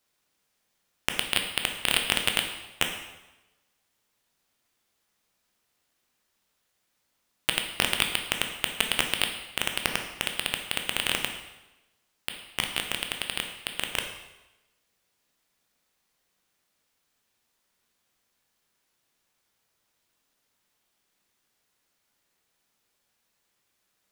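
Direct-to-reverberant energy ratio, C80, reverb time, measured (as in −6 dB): 4.0 dB, 9.0 dB, 1.0 s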